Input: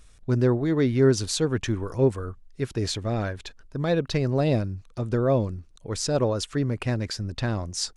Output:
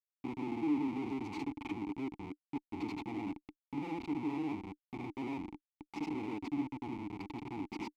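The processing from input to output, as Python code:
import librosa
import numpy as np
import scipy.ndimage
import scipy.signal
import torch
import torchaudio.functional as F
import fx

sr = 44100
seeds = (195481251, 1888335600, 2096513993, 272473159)

y = fx.granulator(x, sr, seeds[0], grain_ms=100.0, per_s=20.0, spray_ms=100.0, spread_st=0)
y = fx.schmitt(y, sr, flips_db=-30.0)
y = fx.vowel_filter(y, sr, vowel='u')
y = y * 10.0 ** (1.5 / 20.0)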